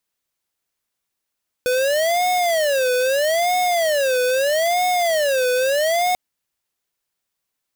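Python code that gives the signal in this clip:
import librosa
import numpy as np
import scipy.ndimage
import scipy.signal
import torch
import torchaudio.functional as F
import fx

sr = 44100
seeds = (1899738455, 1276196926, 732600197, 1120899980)

y = fx.siren(sr, length_s=4.49, kind='wail', low_hz=499.0, high_hz=728.0, per_s=0.78, wave='square', level_db=-18.5)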